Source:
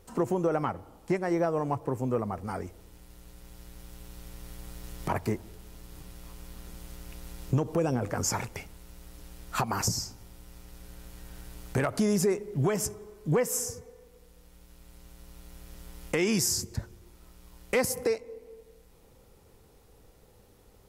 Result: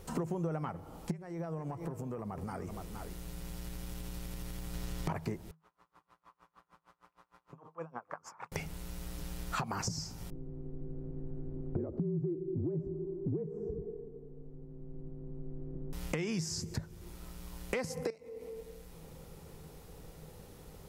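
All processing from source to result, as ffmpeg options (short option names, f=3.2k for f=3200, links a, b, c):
-filter_complex "[0:a]asettb=1/sr,asplit=3[a][b][c];[a]atrim=end=1.114[d];[b]atrim=start=1.11:end=4.74,asetpts=PTS-STARTPTS,afade=t=in:d=0.004:c=qsin,afade=t=out:st=3.626:d=0.004:c=qsin,aecho=1:1:467:0.133,atrim=end_sample=160083,acompressor=threshold=-42dB:ratio=6:attack=3.2:release=140:knee=1:detection=peak[e];[c]atrim=start=4.736[f];[d][e]acrossfade=d=0.004:c1=hsin:c2=qsin[g];[g][f]acrossfade=d=0.004:c1=qsin:c2=hsin,asettb=1/sr,asplit=3[h][i][j];[h]atrim=end=5.514[k];[i]atrim=start=5.51:end=8.52,asetpts=PTS-STARTPTS,afade=t=in:d=0.004:c=qsin,afade=t=out:st=3.006:d=0.004:c=qsin,bandpass=f=1.1k:t=q:w=3.7,aeval=exprs='val(0)*pow(10,-30*(0.5-0.5*cos(2*PI*6.5*n/s))/20)':c=same[l];[j]atrim=start=8.516[m];[k][l]acrossfade=d=0.004:c1=hsin:c2=qsin[n];[n][m]acrossfade=d=0.004:c1=qsin:c2=hsin,asettb=1/sr,asplit=3[o][p][q];[o]atrim=end=10.304[r];[p]atrim=start=10.3:end=15.93,asetpts=PTS-STARTPTS,afade=t=in:d=0.004:c=qsin,afade=t=out:st=5.626:d=0.004:c=qsin,lowpass=f=380:t=q:w=3.6,acompressor=threshold=-24dB:ratio=2:attack=3.2:release=140:knee=1:detection=peak,afreqshift=-35[s];[q]atrim=start=15.926[t];[r][s]acrossfade=d=0.004:c1=hsin:c2=qsin[u];[u][t]acrossfade=d=0.004:c1=qsin:c2=hsin,asettb=1/sr,asplit=3[v][w][x];[v]atrim=end=18.104[y];[w]atrim=start=18.1:end=18.56,asetpts=PTS-STARTPTS,afade=t=in:d=0.004:c=qsin,afade=t=out:st=0.456:d=0.004:c=qsin,highpass=57,bandreject=f=1.6k:w=13,acompressor=threshold=-46dB:ratio=3:attack=3.2:release=140:knee=1:detection=peak[z];[x]atrim=start=18.556[aa];[y][z]acrossfade=d=0.004:c1=hsin:c2=qsin[ab];[ab][aa]acrossfade=d=0.004:c1=qsin:c2=hsin,acrossover=split=7100[ac][ad];[ad]acompressor=threshold=-53dB:ratio=4:attack=1:release=60[ae];[ac][ae]amix=inputs=2:normalize=0,equalizer=f=160:w=8:g=14,acompressor=threshold=-40dB:ratio=5,volume=5.5dB"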